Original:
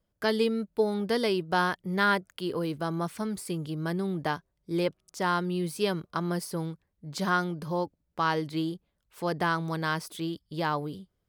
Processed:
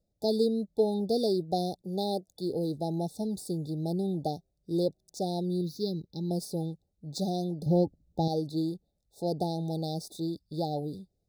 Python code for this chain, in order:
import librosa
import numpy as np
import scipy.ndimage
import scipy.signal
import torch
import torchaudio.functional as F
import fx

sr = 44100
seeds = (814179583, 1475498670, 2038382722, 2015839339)

y = scipy.signal.medfilt(x, 3)
y = fx.highpass(y, sr, hz=210.0, slope=12, at=(1.82, 2.28))
y = fx.fixed_phaser(y, sr, hz=2600.0, stages=6, at=(5.61, 6.31))
y = fx.low_shelf(y, sr, hz=370.0, db=11.5, at=(7.66, 8.28))
y = fx.brickwall_bandstop(y, sr, low_hz=860.0, high_hz=3500.0)